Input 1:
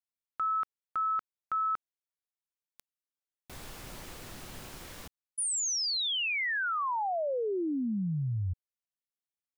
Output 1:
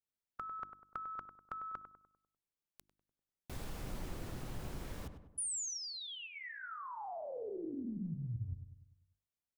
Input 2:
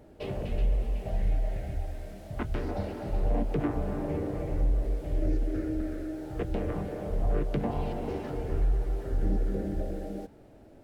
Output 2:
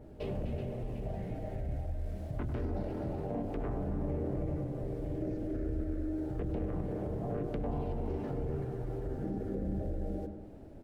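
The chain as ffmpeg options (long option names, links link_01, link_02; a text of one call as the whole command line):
ffmpeg -i in.wav -filter_complex "[0:a]afftfilt=real='re*lt(hypot(re,im),0.282)':imag='im*lt(hypot(re,im),0.282)':win_size=1024:overlap=0.75,lowshelf=frequency=420:gain=10,bandreject=frequency=50:width_type=h:width=6,bandreject=frequency=100:width_type=h:width=6,bandreject=frequency=150:width_type=h:width=6,bandreject=frequency=200:width_type=h:width=6,bandreject=frequency=250:width_type=h:width=6,bandreject=frequency=300:width_type=h:width=6,bandreject=frequency=350:width_type=h:width=6,acompressor=threshold=-34dB:ratio=6:attack=31:release=27:knee=6:detection=peak,asplit=2[link_01][link_02];[link_02]adelay=99,lowpass=frequency=1400:poles=1,volume=-8dB,asplit=2[link_03][link_04];[link_04]adelay=99,lowpass=frequency=1400:poles=1,volume=0.52,asplit=2[link_05][link_06];[link_06]adelay=99,lowpass=frequency=1400:poles=1,volume=0.52,asplit=2[link_07][link_08];[link_08]adelay=99,lowpass=frequency=1400:poles=1,volume=0.52,asplit=2[link_09][link_10];[link_10]adelay=99,lowpass=frequency=1400:poles=1,volume=0.52,asplit=2[link_11][link_12];[link_12]adelay=99,lowpass=frequency=1400:poles=1,volume=0.52[link_13];[link_01][link_03][link_05][link_07][link_09][link_11][link_13]amix=inputs=7:normalize=0,adynamicequalizer=threshold=0.00251:dfrequency=2000:dqfactor=0.7:tfrequency=2000:tqfactor=0.7:attack=5:release=100:ratio=0.417:range=2:mode=cutabove:tftype=highshelf,volume=-4dB" out.wav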